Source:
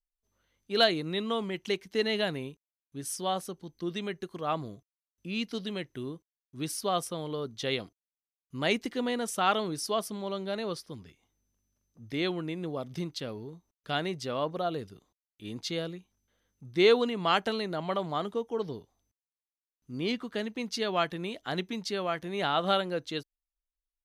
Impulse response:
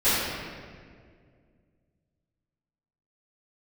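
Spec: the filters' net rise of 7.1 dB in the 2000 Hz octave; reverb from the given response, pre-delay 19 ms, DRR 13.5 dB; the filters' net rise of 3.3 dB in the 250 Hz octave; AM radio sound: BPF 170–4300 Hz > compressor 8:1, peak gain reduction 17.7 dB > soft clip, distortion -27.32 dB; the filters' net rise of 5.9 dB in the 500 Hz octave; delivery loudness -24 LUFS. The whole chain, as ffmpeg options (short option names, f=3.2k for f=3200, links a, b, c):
-filter_complex "[0:a]equalizer=f=250:t=o:g=3.5,equalizer=f=500:t=o:g=6,equalizer=f=2k:t=o:g=9,asplit=2[a][b];[1:a]atrim=start_sample=2205,adelay=19[c];[b][c]afir=irnorm=-1:irlink=0,volume=-30.5dB[d];[a][d]amix=inputs=2:normalize=0,highpass=170,lowpass=4.3k,acompressor=threshold=-29dB:ratio=8,asoftclip=threshold=-18.5dB,volume=11.5dB"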